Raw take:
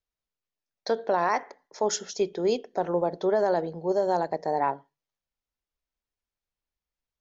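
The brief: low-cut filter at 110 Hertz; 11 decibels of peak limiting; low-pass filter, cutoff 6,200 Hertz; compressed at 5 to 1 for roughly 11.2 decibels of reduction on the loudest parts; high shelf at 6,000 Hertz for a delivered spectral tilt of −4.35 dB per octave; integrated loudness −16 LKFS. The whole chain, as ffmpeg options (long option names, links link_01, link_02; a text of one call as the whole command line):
ffmpeg -i in.wav -af "highpass=110,lowpass=6200,highshelf=frequency=6000:gain=-5,acompressor=threshold=-33dB:ratio=5,volume=25dB,alimiter=limit=-5.5dB:level=0:latency=1" out.wav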